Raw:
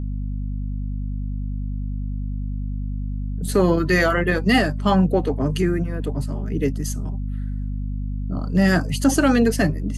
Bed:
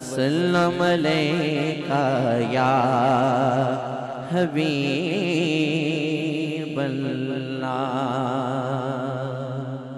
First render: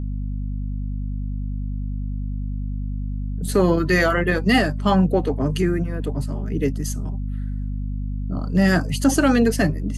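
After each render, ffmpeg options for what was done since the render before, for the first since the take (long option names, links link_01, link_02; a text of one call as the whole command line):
ffmpeg -i in.wav -af anull out.wav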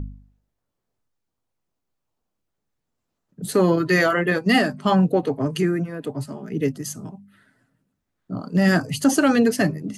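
ffmpeg -i in.wav -af "bandreject=frequency=50:width_type=h:width=4,bandreject=frequency=100:width_type=h:width=4,bandreject=frequency=150:width_type=h:width=4,bandreject=frequency=200:width_type=h:width=4,bandreject=frequency=250:width_type=h:width=4" out.wav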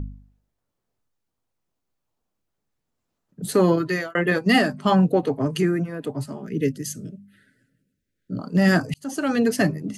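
ffmpeg -i in.wav -filter_complex "[0:a]asettb=1/sr,asplit=3[link_01][link_02][link_03];[link_01]atrim=end=6.474[link_04];[link_02]atrim=start=6.47:end=8.39,asetpts=PTS-STARTPTS,afade=type=in:duration=0.004:curve=qsin,afade=type=out:start_time=1.916:duration=0.004:curve=qsin,asuperstop=centerf=920:order=8:qfactor=1[link_05];[link_03]atrim=start=8.386[link_06];[link_04][link_05]acrossfade=duration=0.004:curve1=hsin:curve2=qsin[link_07];[link_07][link_06]acrossfade=duration=0.004:curve1=qsin:curve2=hsin,asplit=3[link_08][link_09][link_10];[link_08]atrim=end=4.15,asetpts=PTS-STARTPTS,afade=type=out:start_time=3.72:duration=0.43[link_11];[link_09]atrim=start=4.15:end=8.94,asetpts=PTS-STARTPTS,afade=type=in:duration=0.004:curve=hsin,afade=type=out:start_time=4.786:duration=0.004:curve=hsin[link_12];[link_10]atrim=start=8.94,asetpts=PTS-STARTPTS,afade=type=in:duration=0.66[link_13];[link_11][link_12][link_13]concat=n=3:v=0:a=1" out.wav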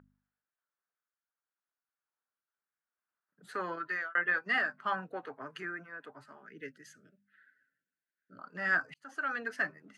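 ffmpeg -i in.wav -af "bandpass=frequency=1500:width_type=q:width=3.9:csg=0" out.wav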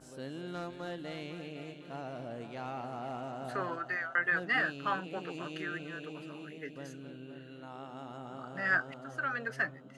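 ffmpeg -i in.wav -i bed.wav -filter_complex "[1:a]volume=-21dB[link_01];[0:a][link_01]amix=inputs=2:normalize=0" out.wav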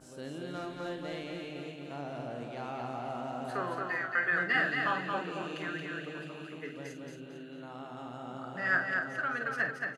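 ffmpeg -i in.wav -filter_complex "[0:a]asplit=2[link_01][link_02];[link_02]adelay=49,volume=-8.5dB[link_03];[link_01][link_03]amix=inputs=2:normalize=0,aecho=1:1:225|450|675|900:0.631|0.202|0.0646|0.0207" out.wav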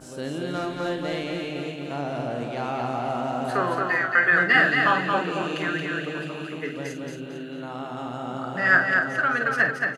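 ffmpeg -i in.wav -af "volume=10.5dB" out.wav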